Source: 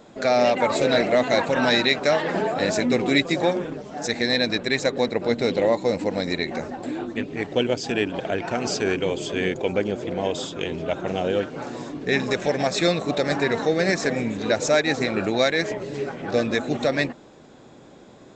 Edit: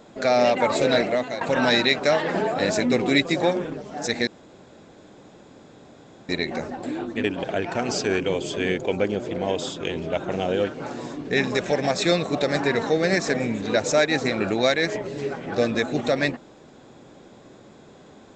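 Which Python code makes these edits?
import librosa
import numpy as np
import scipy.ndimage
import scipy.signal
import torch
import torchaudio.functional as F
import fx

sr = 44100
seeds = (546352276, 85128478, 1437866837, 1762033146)

y = fx.edit(x, sr, fx.fade_out_to(start_s=0.94, length_s=0.47, floor_db=-14.5),
    fx.room_tone_fill(start_s=4.27, length_s=2.02),
    fx.cut(start_s=7.24, length_s=0.76), tone=tone)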